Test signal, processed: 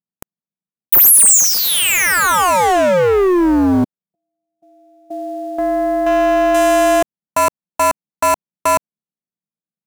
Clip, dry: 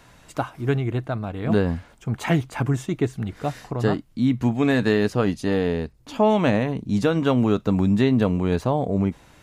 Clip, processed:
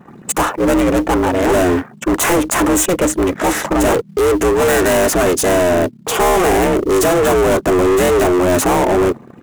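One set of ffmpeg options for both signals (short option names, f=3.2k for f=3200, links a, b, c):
-filter_complex "[0:a]anlmdn=0.0631,adynamicequalizer=threshold=0.00794:dfrequency=7700:dqfactor=1:tfrequency=7700:tqfactor=1:attack=5:release=100:ratio=0.375:range=1.5:mode=cutabove:tftype=bell,aeval=exprs='val(0)*sin(2*PI*180*n/s)':c=same,asplit=2[a][b];[b]highpass=f=720:p=1,volume=39dB,asoftclip=type=tanh:threshold=-6dB[c];[a][c]amix=inputs=2:normalize=0,lowpass=f=1.6k:p=1,volume=-6dB,aexciter=amount=10.9:drive=1.2:freq=6.5k,asplit=2[d][e];[e]acrusher=bits=4:mode=log:mix=0:aa=0.000001,volume=-6dB[f];[d][f]amix=inputs=2:normalize=0,volume=-3dB"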